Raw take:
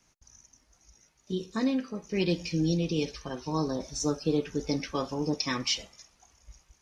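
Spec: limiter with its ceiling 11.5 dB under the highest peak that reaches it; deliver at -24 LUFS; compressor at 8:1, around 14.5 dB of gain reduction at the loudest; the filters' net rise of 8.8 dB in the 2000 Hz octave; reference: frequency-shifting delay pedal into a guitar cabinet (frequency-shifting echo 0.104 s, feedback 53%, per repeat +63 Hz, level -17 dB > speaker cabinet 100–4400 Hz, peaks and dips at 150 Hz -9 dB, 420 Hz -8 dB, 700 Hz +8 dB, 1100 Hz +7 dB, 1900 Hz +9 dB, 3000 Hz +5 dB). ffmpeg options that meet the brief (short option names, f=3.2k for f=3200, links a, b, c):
-filter_complex "[0:a]equalizer=f=2k:t=o:g=3.5,acompressor=threshold=-38dB:ratio=8,alimiter=level_in=14dB:limit=-24dB:level=0:latency=1,volume=-14dB,asplit=6[a][b][c][d][e][f];[b]adelay=104,afreqshift=63,volume=-17dB[g];[c]adelay=208,afreqshift=126,volume=-22.5dB[h];[d]adelay=312,afreqshift=189,volume=-28dB[i];[e]adelay=416,afreqshift=252,volume=-33.5dB[j];[f]adelay=520,afreqshift=315,volume=-39.1dB[k];[a][g][h][i][j][k]amix=inputs=6:normalize=0,highpass=100,equalizer=f=150:t=q:w=4:g=-9,equalizer=f=420:t=q:w=4:g=-8,equalizer=f=700:t=q:w=4:g=8,equalizer=f=1.1k:t=q:w=4:g=7,equalizer=f=1.9k:t=q:w=4:g=9,equalizer=f=3k:t=q:w=4:g=5,lowpass=f=4.4k:w=0.5412,lowpass=f=4.4k:w=1.3066,volume=24dB"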